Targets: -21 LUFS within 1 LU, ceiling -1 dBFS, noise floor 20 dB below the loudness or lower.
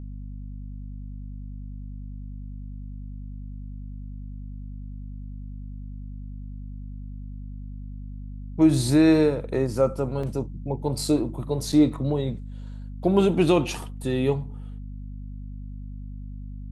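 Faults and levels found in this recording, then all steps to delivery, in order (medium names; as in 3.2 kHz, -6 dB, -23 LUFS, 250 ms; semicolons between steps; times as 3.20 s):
dropouts 2; longest dropout 4.4 ms; hum 50 Hz; highest harmonic 250 Hz; hum level -34 dBFS; loudness -23.5 LUFS; peak level -7.0 dBFS; loudness target -21.0 LUFS
-> interpolate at 10.23/11.72 s, 4.4 ms; hum notches 50/100/150/200/250 Hz; trim +2.5 dB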